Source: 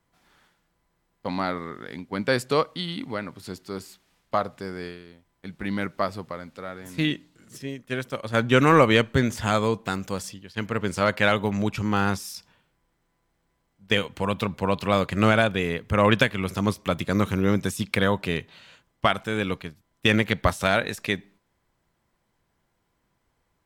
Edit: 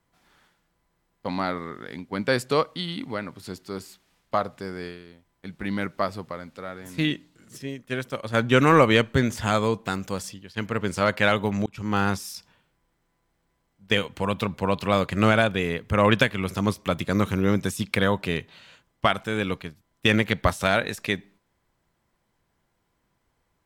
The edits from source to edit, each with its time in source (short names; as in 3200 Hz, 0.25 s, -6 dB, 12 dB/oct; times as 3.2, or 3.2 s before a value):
11.66–11.96 fade in